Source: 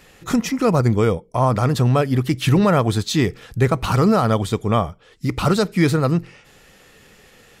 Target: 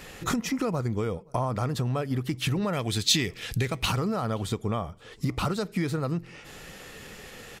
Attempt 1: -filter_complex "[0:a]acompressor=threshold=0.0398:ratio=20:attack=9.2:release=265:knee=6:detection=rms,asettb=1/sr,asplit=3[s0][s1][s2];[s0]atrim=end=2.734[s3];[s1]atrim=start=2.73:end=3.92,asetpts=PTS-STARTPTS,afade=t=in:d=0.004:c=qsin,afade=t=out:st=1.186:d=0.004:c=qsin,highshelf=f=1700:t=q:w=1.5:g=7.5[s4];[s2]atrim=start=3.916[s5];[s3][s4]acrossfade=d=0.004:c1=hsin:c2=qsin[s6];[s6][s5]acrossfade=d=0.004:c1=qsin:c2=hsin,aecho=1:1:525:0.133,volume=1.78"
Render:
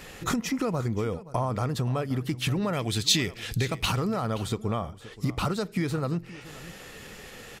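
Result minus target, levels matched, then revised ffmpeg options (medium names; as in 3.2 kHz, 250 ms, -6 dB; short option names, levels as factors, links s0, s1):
echo-to-direct +11.5 dB
-filter_complex "[0:a]acompressor=threshold=0.0398:ratio=20:attack=9.2:release=265:knee=6:detection=rms,asettb=1/sr,asplit=3[s0][s1][s2];[s0]atrim=end=2.734[s3];[s1]atrim=start=2.73:end=3.92,asetpts=PTS-STARTPTS,afade=t=in:d=0.004:c=qsin,afade=t=out:st=1.186:d=0.004:c=qsin,highshelf=f=1700:t=q:w=1.5:g=7.5[s4];[s2]atrim=start=3.916[s5];[s3][s4]acrossfade=d=0.004:c1=hsin:c2=qsin[s6];[s6][s5]acrossfade=d=0.004:c1=qsin:c2=hsin,aecho=1:1:525:0.0355,volume=1.78"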